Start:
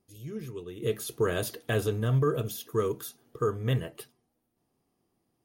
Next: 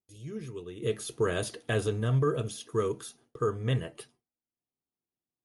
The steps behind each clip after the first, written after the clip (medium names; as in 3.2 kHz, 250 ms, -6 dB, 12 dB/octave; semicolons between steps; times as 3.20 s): gate with hold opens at -53 dBFS; Chebyshev low-pass 11 kHz, order 8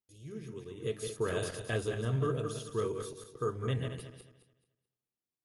backward echo that repeats 108 ms, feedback 51%, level -5 dB; trim -5.5 dB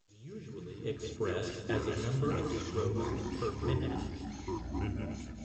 ever faster or slower copies 171 ms, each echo -4 st, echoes 3; flutter echo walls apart 9.1 m, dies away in 0.21 s; trim -2.5 dB; A-law 128 kbps 16 kHz